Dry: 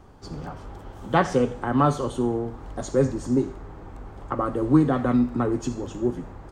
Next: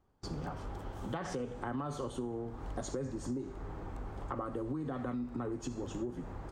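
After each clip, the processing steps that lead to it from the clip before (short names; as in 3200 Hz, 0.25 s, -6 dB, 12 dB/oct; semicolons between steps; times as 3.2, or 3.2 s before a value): gate with hold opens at -33 dBFS; limiter -16.5 dBFS, peak gain reduction 11.5 dB; compressor, threshold -33 dBFS, peak gain reduction 12.5 dB; gain -2 dB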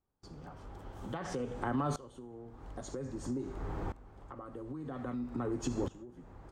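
dB-ramp tremolo swelling 0.51 Hz, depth 20 dB; gain +6.5 dB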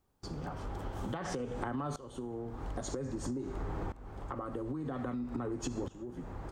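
compressor 6:1, threshold -44 dBFS, peak gain reduction 14 dB; gain +9.5 dB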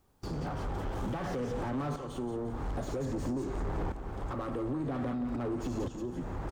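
soft clip -36 dBFS, distortion -12 dB; feedback echo 0.176 s, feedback 41%, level -13 dB; slew limiter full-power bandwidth 7.6 Hz; gain +7 dB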